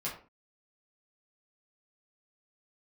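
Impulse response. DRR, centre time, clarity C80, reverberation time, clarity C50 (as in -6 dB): -7.5 dB, 28 ms, 12.0 dB, 0.35 s, 7.5 dB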